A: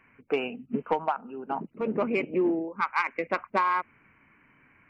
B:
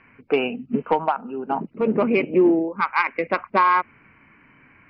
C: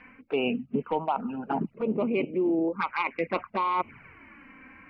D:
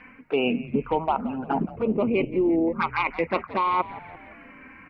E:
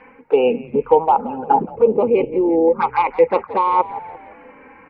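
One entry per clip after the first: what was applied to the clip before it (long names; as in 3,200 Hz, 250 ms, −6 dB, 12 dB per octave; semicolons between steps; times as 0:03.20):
harmonic and percussive parts rebalanced harmonic +3 dB; Chebyshev low-pass filter 5,100 Hz, order 5; level +6 dB
flanger swept by the level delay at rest 4.1 ms, full sweep at −18 dBFS; reversed playback; downward compressor 6 to 1, threshold −30 dBFS, peak gain reduction 15.5 dB; reversed playback; level +5.5 dB
echo with shifted repeats 172 ms, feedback 51%, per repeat −100 Hz, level −16.5 dB; level +3.5 dB
hollow resonant body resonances 490/830 Hz, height 18 dB, ringing for 30 ms; level −2.5 dB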